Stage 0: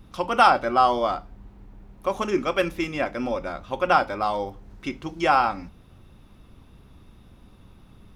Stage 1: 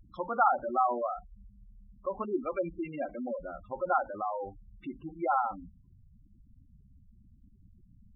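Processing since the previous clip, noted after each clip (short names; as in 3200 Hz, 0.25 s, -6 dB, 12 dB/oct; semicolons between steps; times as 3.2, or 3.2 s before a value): spectral gate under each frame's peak -10 dB strong; gain -7.5 dB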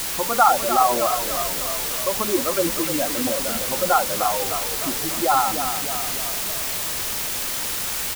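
requantised 6-bit, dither triangular; on a send: frequency-shifting echo 0.301 s, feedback 59%, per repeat -33 Hz, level -9 dB; on the sum: gain +9 dB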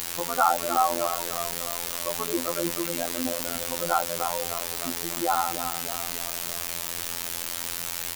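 robotiser 85.4 Hz; gain -4 dB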